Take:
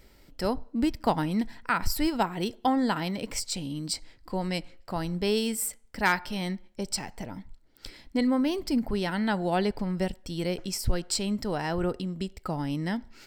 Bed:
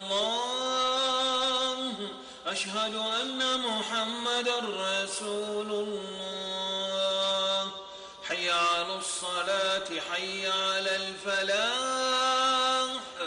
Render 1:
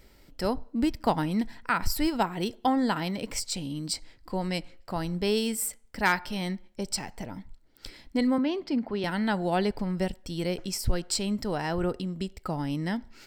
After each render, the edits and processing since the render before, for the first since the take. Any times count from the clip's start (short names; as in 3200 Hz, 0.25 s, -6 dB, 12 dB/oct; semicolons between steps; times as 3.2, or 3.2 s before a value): 8.38–9.04 three-band isolator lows -20 dB, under 170 Hz, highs -23 dB, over 4700 Hz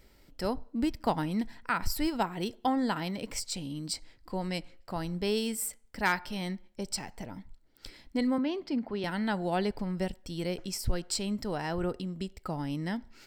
gain -3.5 dB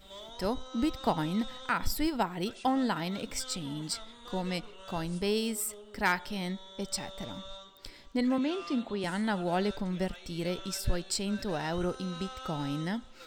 add bed -18.5 dB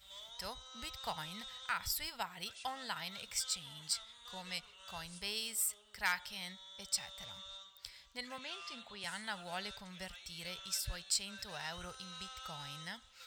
HPF 54 Hz 12 dB/oct; passive tone stack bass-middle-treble 10-0-10